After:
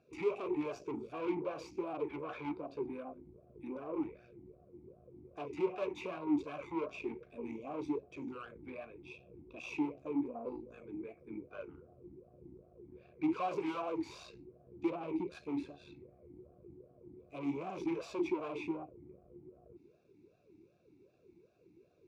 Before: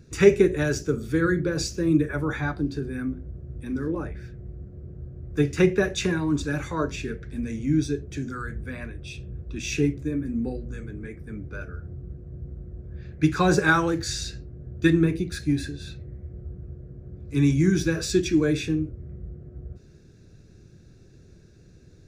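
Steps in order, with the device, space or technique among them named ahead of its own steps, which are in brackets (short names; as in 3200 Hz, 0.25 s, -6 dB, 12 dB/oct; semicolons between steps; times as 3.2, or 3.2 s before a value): talk box (tube stage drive 30 dB, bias 0.65; vowel sweep a-u 2.6 Hz); gain +6 dB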